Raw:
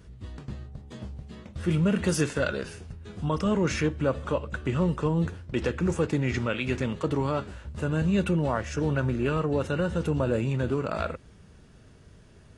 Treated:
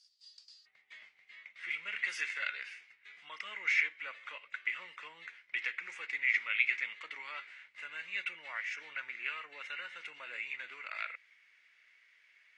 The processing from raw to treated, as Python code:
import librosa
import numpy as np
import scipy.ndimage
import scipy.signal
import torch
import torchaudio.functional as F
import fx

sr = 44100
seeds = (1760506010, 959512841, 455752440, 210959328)

y = fx.ladder_bandpass(x, sr, hz=fx.steps((0.0, 5000.0), (0.65, 2200.0)), resonance_pct=85)
y = y * librosa.db_to_amplitude(7.0)